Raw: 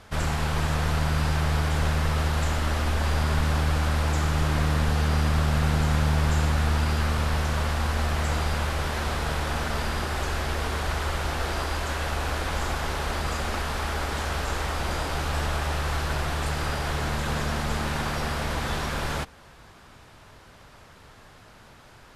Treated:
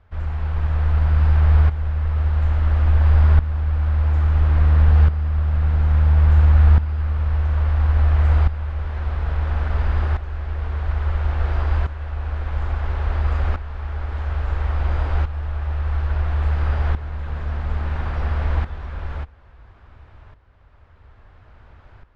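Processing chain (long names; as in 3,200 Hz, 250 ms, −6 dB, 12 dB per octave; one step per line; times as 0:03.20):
low-pass filter 2,200 Hz 12 dB per octave
low shelf with overshoot 110 Hz +11 dB, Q 1.5
shaped tremolo saw up 0.59 Hz, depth 75%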